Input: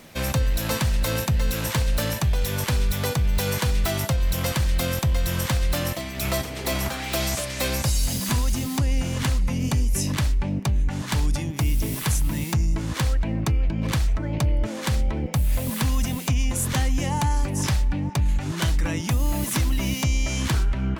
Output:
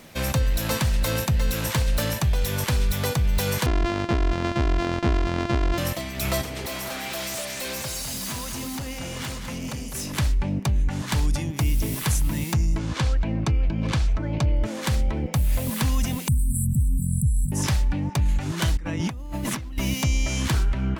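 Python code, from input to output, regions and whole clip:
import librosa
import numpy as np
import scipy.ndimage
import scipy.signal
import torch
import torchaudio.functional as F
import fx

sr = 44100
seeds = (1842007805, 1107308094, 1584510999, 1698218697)

y = fx.chain(x, sr, fx.sample_sort(block=128),
    fx.air_absorb(metres=140.0), at=(3.66, 5.78))
y = fx.chain(y, sr, fx.highpass(hz=300.0, slope=6),
    fx.overload_stage(gain_db=29.0),
    fx.echo_single(ms=204, db=-7.0), at=(6.66, 10.18))
y = fx.chain(y, sr, fx.lowpass(hz=6600.0, slope=12),
    fx.notch(hz=1900.0, q=16.0), at=(12.78, 14.61))
y = fx.chain(y, sr, fx.brickwall_bandstop(low_hz=250.0, high_hz=7600.0),
    fx.band_squash(depth_pct=100), at=(16.28, 17.52))
y = fx.chain(y, sr, fx.lowpass(hz=2500.0, slope=6),
    fx.over_compress(threshold_db=-30.0, ratio=-1.0), at=(18.77, 19.78))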